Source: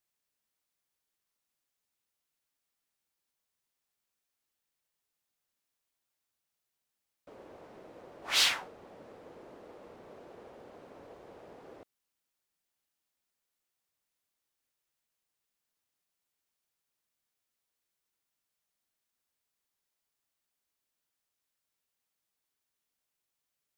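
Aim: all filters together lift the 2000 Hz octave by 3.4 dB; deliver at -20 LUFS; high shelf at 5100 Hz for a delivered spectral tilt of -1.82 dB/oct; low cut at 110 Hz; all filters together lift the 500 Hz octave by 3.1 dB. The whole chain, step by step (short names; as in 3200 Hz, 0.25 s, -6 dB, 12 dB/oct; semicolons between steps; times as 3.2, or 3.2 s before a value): HPF 110 Hz; bell 500 Hz +3.5 dB; bell 2000 Hz +5 dB; high shelf 5100 Hz -5 dB; gain +7.5 dB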